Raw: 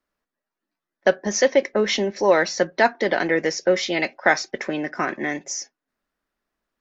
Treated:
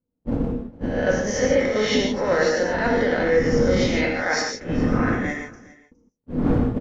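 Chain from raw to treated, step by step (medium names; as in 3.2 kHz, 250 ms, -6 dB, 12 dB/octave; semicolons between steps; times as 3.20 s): reverse spectral sustain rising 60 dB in 0.69 s; wind noise 230 Hz -18 dBFS; dynamic bell 1.4 kHz, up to +5 dB, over -30 dBFS, Q 1.5; gate -20 dBFS, range -55 dB; reverse; compression 5:1, threshold -22 dBFS, peak gain reduction 19 dB; reverse; small resonant body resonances 260/470 Hz, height 11 dB, ringing for 70 ms; on a send: delay 413 ms -21.5 dB; on the sum: gated-style reverb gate 180 ms flat, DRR 0 dB; trim -1.5 dB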